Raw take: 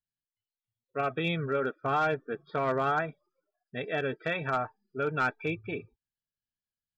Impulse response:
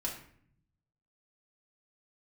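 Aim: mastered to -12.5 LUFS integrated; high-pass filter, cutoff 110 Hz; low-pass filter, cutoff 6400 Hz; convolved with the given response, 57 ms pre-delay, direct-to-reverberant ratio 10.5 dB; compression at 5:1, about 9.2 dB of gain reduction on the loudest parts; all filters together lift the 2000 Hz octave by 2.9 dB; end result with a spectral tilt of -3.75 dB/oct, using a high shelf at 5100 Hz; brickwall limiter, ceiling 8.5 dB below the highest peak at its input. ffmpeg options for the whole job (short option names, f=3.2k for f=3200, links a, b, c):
-filter_complex "[0:a]highpass=110,lowpass=6.4k,equalizer=f=2k:t=o:g=3,highshelf=f=5.1k:g=7.5,acompressor=threshold=-33dB:ratio=5,alimiter=level_in=5dB:limit=-24dB:level=0:latency=1,volume=-5dB,asplit=2[a][b];[1:a]atrim=start_sample=2205,adelay=57[c];[b][c]afir=irnorm=-1:irlink=0,volume=-12.5dB[d];[a][d]amix=inputs=2:normalize=0,volume=27dB"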